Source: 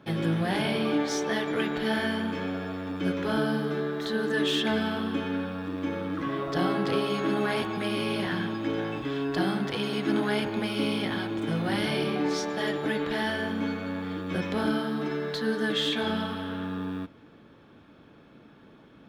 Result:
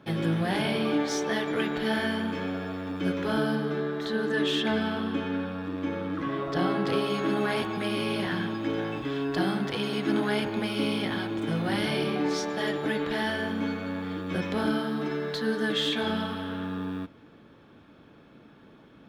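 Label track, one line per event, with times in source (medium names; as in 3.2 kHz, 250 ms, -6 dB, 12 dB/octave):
3.550000	6.870000	treble shelf 6.6 kHz -6.5 dB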